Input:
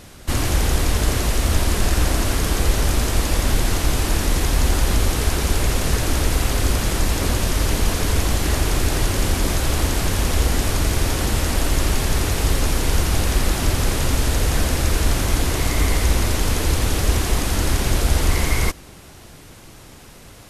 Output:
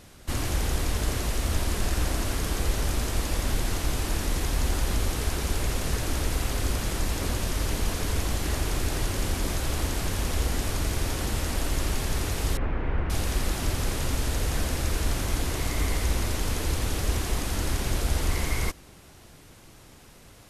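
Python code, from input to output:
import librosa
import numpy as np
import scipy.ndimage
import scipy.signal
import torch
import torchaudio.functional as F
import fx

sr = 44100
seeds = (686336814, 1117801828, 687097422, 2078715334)

y = fx.lowpass(x, sr, hz=2200.0, slope=24, at=(12.57, 13.1))
y = F.gain(torch.from_numpy(y), -8.0).numpy()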